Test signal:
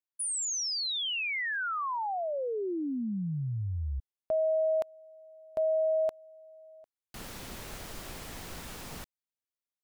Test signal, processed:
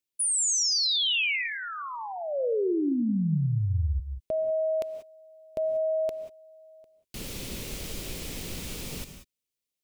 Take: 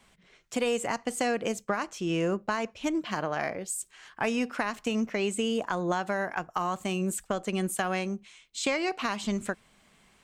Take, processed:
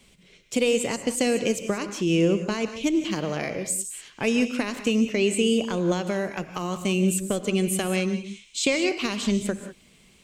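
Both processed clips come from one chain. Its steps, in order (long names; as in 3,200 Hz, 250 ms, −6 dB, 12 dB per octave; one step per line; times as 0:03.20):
flat-topped bell 1,100 Hz −10.5 dB
reverb whose tail is shaped and stops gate 210 ms rising, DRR 9 dB
level +6.5 dB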